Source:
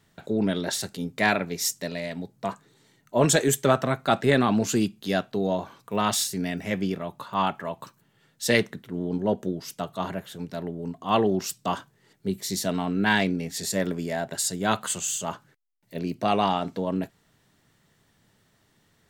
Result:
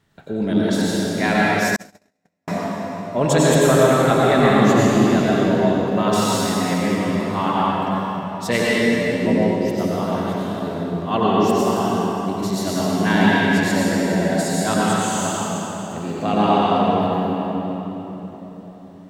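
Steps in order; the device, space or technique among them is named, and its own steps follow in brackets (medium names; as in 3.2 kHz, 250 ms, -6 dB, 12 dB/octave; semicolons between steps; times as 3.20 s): swimming-pool hall (reverberation RT60 4.1 s, pre-delay 83 ms, DRR -7 dB; treble shelf 4.7 kHz -7 dB); 1.76–2.48 s: gate -16 dBFS, range -52 dB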